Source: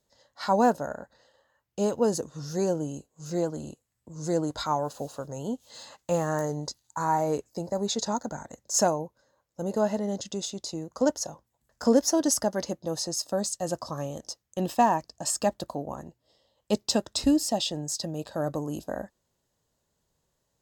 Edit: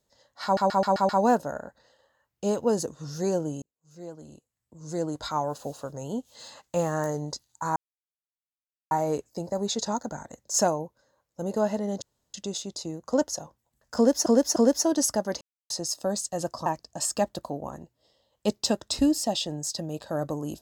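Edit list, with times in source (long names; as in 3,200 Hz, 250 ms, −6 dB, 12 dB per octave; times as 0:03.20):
0:00.44: stutter 0.13 s, 6 plays
0:02.97–0:04.93: fade in
0:07.11: splice in silence 1.15 s
0:10.22: splice in room tone 0.32 s
0:11.84–0:12.14: repeat, 3 plays
0:12.69–0:12.98: silence
0:13.94–0:14.91: remove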